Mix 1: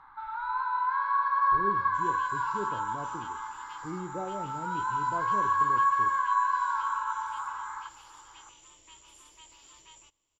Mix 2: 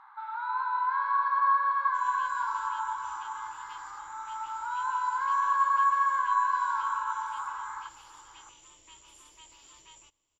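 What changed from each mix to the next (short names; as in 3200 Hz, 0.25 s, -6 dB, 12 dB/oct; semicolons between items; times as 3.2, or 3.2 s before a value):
speech: muted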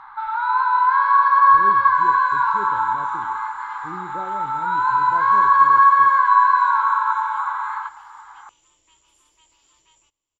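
speech: unmuted; first sound +12.0 dB; second sound -5.5 dB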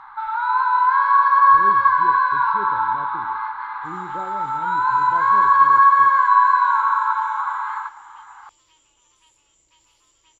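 second sound: entry +1.90 s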